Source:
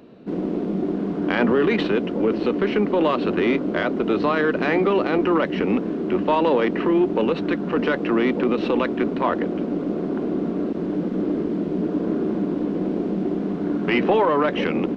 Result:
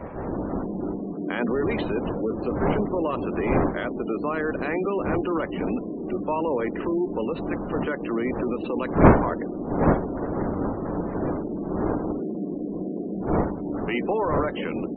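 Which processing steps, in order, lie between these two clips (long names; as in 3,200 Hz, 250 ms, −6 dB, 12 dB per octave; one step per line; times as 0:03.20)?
wind on the microphone 580 Hz −22 dBFS
gate on every frequency bin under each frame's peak −25 dB strong
level −6.5 dB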